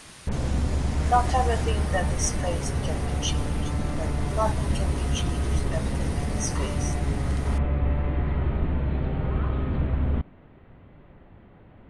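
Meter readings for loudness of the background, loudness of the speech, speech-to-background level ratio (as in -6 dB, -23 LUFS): -27.5 LUFS, -31.5 LUFS, -4.0 dB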